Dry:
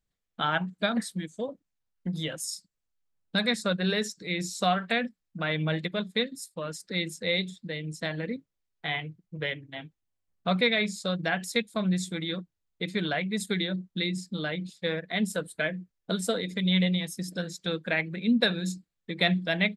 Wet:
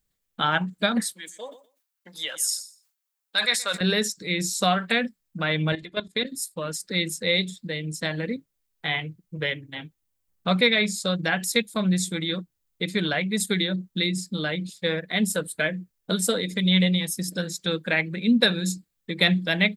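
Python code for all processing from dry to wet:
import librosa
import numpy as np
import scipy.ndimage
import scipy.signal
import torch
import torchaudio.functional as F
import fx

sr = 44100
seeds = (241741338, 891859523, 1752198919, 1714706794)

y = fx.chain(x, sr, fx.highpass(hz=800.0, slope=12),
    fx.echo_feedback(ms=123, feedback_pct=21, wet_db=-20),
    fx.sustainer(db_per_s=140.0), at=(1.13, 3.81))
y = fx.chain(y, sr, fx.lowpass(hz=9300.0, slope=12),
    fx.level_steps(step_db=14),
    fx.comb(ms=2.9, depth=0.49), at=(5.72, 6.25))
y = fx.high_shelf(y, sr, hz=8200.0, db=12.0)
y = fx.notch(y, sr, hz=680.0, q=12.0)
y = y * librosa.db_to_amplitude(4.0)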